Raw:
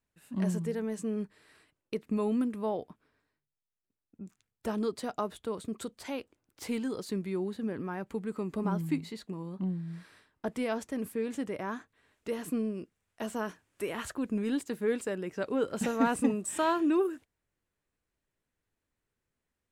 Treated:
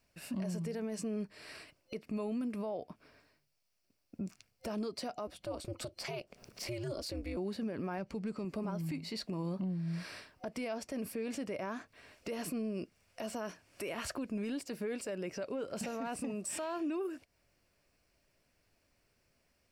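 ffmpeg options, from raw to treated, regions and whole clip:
ffmpeg -i in.wav -filter_complex "[0:a]asettb=1/sr,asplit=3[link_01][link_02][link_03];[link_01]atrim=end=5.274[link_04];[link_02]atrim=start=5.27:end=7.37,asetpts=PTS-STARTPTS,afade=type=in:duration=0.004:curve=qsin,afade=type=out:start_time=2.096:duration=0.004:curve=qsin,acompressor=mode=upward:threshold=-48dB:ratio=2.5:attack=3.2:release=140:knee=2.83:detection=peak,aeval=exprs='val(0)*sin(2*PI*120*n/s)':channel_layout=same[link_05];[link_03]atrim=start=7.366[link_06];[link_04][link_05]acrossfade=duration=0.004:curve1=hsin:curve2=qsin[link_07];[link_07][link_06]acrossfade=duration=0.004:curve1=qsin:curve2=hsin,asettb=1/sr,asplit=3[link_08][link_09][link_10];[link_08]atrim=end=7.984[link_11];[link_09]atrim=start=7.98:end=8.45,asetpts=PTS-STARTPTS,afade=type=in:duration=0.004:curve=qsin,afade=type=out:start_time=0.466:duration=0.004:curve=qsin,adynamicsmooth=sensitivity=7.5:basefreq=3700,bass=frequency=250:gain=5,treble=frequency=4000:gain=13[link_12];[link_10]atrim=start=8.446[link_13];[link_11][link_12]acrossfade=duration=0.004:curve1=hsin:curve2=qsin[link_14];[link_14][link_13]acrossfade=duration=0.004:curve1=qsin:curve2=hsin,superequalizer=8b=2:12b=1.78:14b=2.51,acompressor=threshold=-43dB:ratio=6,alimiter=level_in=16dB:limit=-24dB:level=0:latency=1:release=34,volume=-16dB,volume=9.5dB" out.wav

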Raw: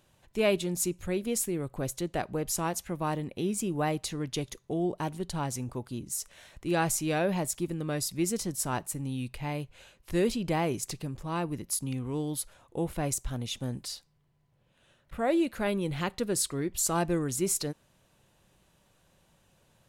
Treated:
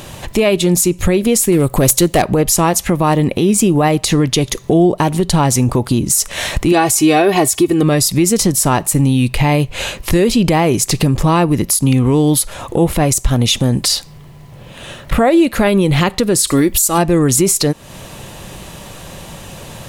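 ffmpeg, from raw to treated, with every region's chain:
ffmpeg -i in.wav -filter_complex "[0:a]asettb=1/sr,asplit=3[link_01][link_02][link_03];[link_01]atrim=end=1.524[link_04];[link_02]atrim=start=1.52:end=2.22,asetpts=PTS-STARTPTS,afade=type=in:duration=0.004:curve=qsin,afade=type=out:start_time=0.696:duration=0.004:curve=qsin,highshelf=frequency=6900:gain=11.5,asoftclip=type=hard:threshold=-25.5dB[link_05];[link_03]atrim=start=2.216[link_06];[link_04][link_05]acrossfade=duration=0.004:curve1=hsin:curve2=qsin[link_07];[link_07][link_06]acrossfade=duration=0.004:curve1=qsin:curve2=hsin,asettb=1/sr,asplit=3[link_08][link_09][link_10];[link_08]atrim=end=6.724[link_11];[link_09]atrim=start=6.72:end=7.83,asetpts=PTS-STARTPTS,afade=type=in:duration=0.004:curve=qsin,afade=type=out:start_time=1.106:duration=0.004:curve=qsin,highpass=80,aecho=1:1:2.7:0.72,atrim=end_sample=48951[link_12];[link_10]atrim=start=7.826[link_13];[link_11][link_12]acrossfade=duration=0.004:curve1=hsin:curve2=qsin[link_14];[link_14][link_13]acrossfade=duration=0.004:curve1=qsin:curve2=hsin,asettb=1/sr,asplit=3[link_15][link_16][link_17];[link_15]atrim=end=16.474[link_18];[link_16]atrim=start=16.47:end=16.98,asetpts=PTS-STARTPTS,afade=type=in:duration=0.004:curve=qsin,afade=type=out:start_time=0.506:duration=0.004:curve=qsin,aemphasis=mode=production:type=50kf,aecho=1:1:3.5:0.35,atrim=end_sample=22491[link_19];[link_17]atrim=start=16.976[link_20];[link_18][link_19]acrossfade=duration=0.004:curve1=hsin:curve2=qsin[link_21];[link_21][link_20]acrossfade=duration=0.004:curve1=qsin:curve2=hsin,bandreject=frequency=1500:width=13,acompressor=threshold=-43dB:ratio=5,alimiter=level_in=36dB:limit=-1dB:release=50:level=0:latency=1,volume=-2.5dB" out.wav

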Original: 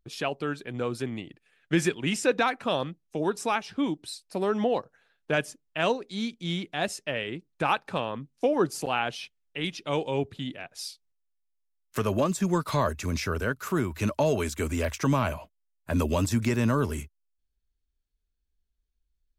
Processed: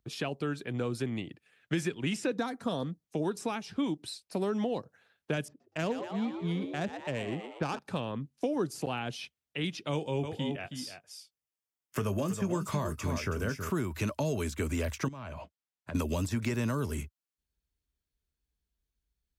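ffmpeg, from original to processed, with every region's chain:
ffmpeg -i in.wav -filter_complex "[0:a]asettb=1/sr,asplit=3[link_01][link_02][link_03];[link_01]atrim=end=2.374[link_04];[link_02]atrim=start=2.37:end=3.04,asetpts=PTS-STARTPTS,afade=type=in:duration=0.004:curve=qsin,afade=type=out:start_time=0.666:duration=0.004:curve=qsin,equalizer=frequency=2600:width_type=o:width=0.4:gain=-14,aecho=1:1:4.3:0.32,atrim=end_sample=29547[link_05];[link_03]atrim=start=3.036[link_06];[link_04][link_05]acrossfade=duration=0.004:curve1=hsin:curve2=qsin[link_07];[link_07][link_06]acrossfade=duration=0.004:curve1=qsin:curve2=hsin,asettb=1/sr,asplit=3[link_08][link_09][link_10];[link_08]atrim=end=5.484[link_11];[link_09]atrim=start=5.48:end=7.79,asetpts=PTS-STARTPTS,afade=type=in:duration=0.004:curve=qsin,afade=type=out:start_time=2.306:duration=0.004:curve=qsin,lowpass=4900,adynamicsmooth=sensitivity=1.5:basefreq=1200,asplit=7[link_12][link_13][link_14][link_15][link_16][link_17][link_18];[link_13]adelay=119,afreqshift=100,volume=-10dB[link_19];[link_14]adelay=238,afreqshift=200,volume=-15.5dB[link_20];[link_15]adelay=357,afreqshift=300,volume=-21dB[link_21];[link_16]adelay=476,afreqshift=400,volume=-26.5dB[link_22];[link_17]adelay=595,afreqshift=500,volume=-32.1dB[link_23];[link_18]adelay=714,afreqshift=600,volume=-37.6dB[link_24];[link_12][link_19][link_20][link_21][link_22][link_23][link_24]amix=inputs=7:normalize=0,atrim=end_sample=101871[link_25];[link_10]atrim=start=7.786[link_26];[link_11][link_25]acrossfade=duration=0.004:curve1=hsin:curve2=qsin[link_27];[link_27][link_26]acrossfade=duration=0.004:curve1=qsin:curve2=hsin,asettb=1/sr,asplit=3[link_28][link_29][link_30];[link_28]atrim=end=9.914[link_31];[link_29]atrim=start=9.91:end=13.7,asetpts=PTS-STARTPTS,afade=type=in:duration=0.004:curve=qsin,afade=type=out:start_time=3.786:duration=0.004:curve=qsin,bandreject=frequency=4000:width=5.2,asplit=2[link_32][link_33];[link_33]adelay=20,volume=-12dB[link_34];[link_32][link_34]amix=inputs=2:normalize=0,atrim=end_sample=167139,aecho=1:1:321:0.335,atrim=end_sample=167139[link_35];[link_30]atrim=start=13.696[link_36];[link_31][link_35]acrossfade=duration=0.004:curve1=hsin:curve2=qsin[link_37];[link_37][link_36]acrossfade=duration=0.004:curve1=qsin:curve2=hsin,asettb=1/sr,asplit=3[link_38][link_39][link_40];[link_38]atrim=end=15.084[link_41];[link_39]atrim=start=15.08:end=15.95,asetpts=PTS-STARTPTS,afade=type=in:duration=0.004:curve=qsin,afade=type=out:start_time=0.866:duration=0.004:curve=qsin,lowpass=6200,acompressor=threshold=-37dB:ratio=10:attack=3.2:release=140:knee=1:detection=peak[link_42];[link_40]atrim=start=15.946[link_43];[link_41][link_42]acrossfade=duration=0.004:curve1=hsin:curve2=qsin[link_44];[link_44][link_43]acrossfade=duration=0.004:curve1=qsin:curve2=hsin,highpass=77,lowshelf=frequency=150:gain=6,acrossover=split=370|4100[link_45][link_46][link_47];[link_45]acompressor=threshold=-31dB:ratio=4[link_48];[link_46]acompressor=threshold=-36dB:ratio=4[link_49];[link_47]acompressor=threshold=-45dB:ratio=4[link_50];[link_48][link_49][link_50]amix=inputs=3:normalize=0" out.wav

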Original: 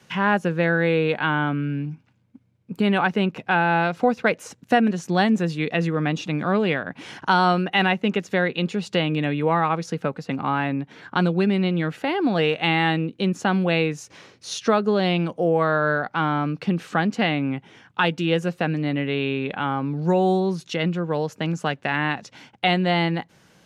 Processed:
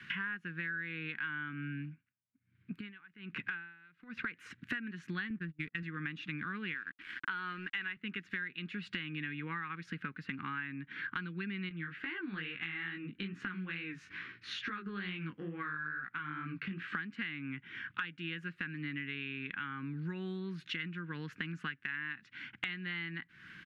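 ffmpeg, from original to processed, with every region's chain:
ffmpeg -i in.wav -filter_complex "[0:a]asettb=1/sr,asplit=3[link_01][link_02][link_03];[link_01]atrim=end=1.804[link_04];[link_02]atrim=start=1.8:end=4.36,asetpts=PTS-STARTPTS,afade=type=in:duration=0.004:curve=qsin,afade=type=out:start_time=2.556:duration=0.004:curve=qsin,acompressor=threshold=-21dB:ratio=6:attack=3.2:release=140:knee=1:detection=peak,aeval=exprs='val(0)*pow(10,-36*(0.5-0.5*cos(2*PI*1.2*n/s))/20)':channel_layout=same[link_05];[link_03]atrim=start=4.356[link_06];[link_04][link_05]acrossfade=duration=0.004:curve1=hsin:curve2=qsin[link_07];[link_07][link_06]acrossfade=duration=0.004:curve1=qsin:curve2=hsin,asettb=1/sr,asplit=3[link_08][link_09][link_10];[link_08]atrim=end=5.304[link_11];[link_09]atrim=start=5.3:end=5.83,asetpts=PTS-STARTPTS,afade=type=in:duration=0.004:curve=qsin,afade=type=out:start_time=0.526:duration=0.004:curve=qsin,agate=range=-27dB:threshold=-26dB:ratio=16:release=100:detection=peak,adynamicsmooth=sensitivity=4.5:basefreq=800,bass=frequency=250:gain=5,treble=frequency=4000:gain=-5[link_12];[link_10]atrim=start=5.826[link_13];[link_11][link_12]acrossfade=duration=0.004:curve1=hsin:curve2=qsin[link_14];[link_14][link_13]acrossfade=duration=0.004:curve1=qsin:curve2=hsin,asettb=1/sr,asplit=3[link_15][link_16][link_17];[link_15]atrim=end=6.744[link_18];[link_16]atrim=start=6.74:end=7.97,asetpts=PTS-STARTPTS,afade=type=in:duration=0.004:curve=qsin,afade=type=out:start_time=1.226:duration=0.004:curve=qsin,highpass=210,lowpass=4200,agate=range=-33dB:threshold=-42dB:ratio=3:release=100:detection=peak,aeval=exprs='sgn(val(0))*max(abs(val(0))-0.00841,0)':channel_layout=same[link_19];[link_17]atrim=start=7.966[link_20];[link_18][link_19]acrossfade=duration=0.004:curve1=hsin:curve2=qsin[link_21];[link_21][link_20]acrossfade=duration=0.004:curve1=qsin:curve2=hsin,asettb=1/sr,asplit=3[link_22][link_23][link_24];[link_22]atrim=end=11.694[link_25];[link_23]atrim=start=11.69:end=16.95,asetpts=PTS-STARTPTS,afade=type=in:duration=0.004:curve=qsin,afade=type=out:start_time=5.256:duration=0.004:curve=qsin,highshelf=frequency=5000:gain=-11,acompressor=threshold=-23dB:ratio=3:attack=3.2:release=140:knee=1:detection=peak,flanger=delay=15:depth=6.1:speed=2.3[link_26];[link_24]atrim=start=16.946[link_27];[link_25][link_26]acrossfade=duration=0.004:curve1=hsin:curve2=qsin[link_28];[link_28][link_27]acrossfade=duration=0.004:curve1=qsin:curve2=hsin,firequalizer=gain_entry='entry(310,0);entry(620,-28);entry(1100,0);entry(1600,14);entry(6000,-13)':delay=0.05:min_phase=1,acompressor=threshold=-36dB:ratio=8,volume=-1.5dB" out.wav

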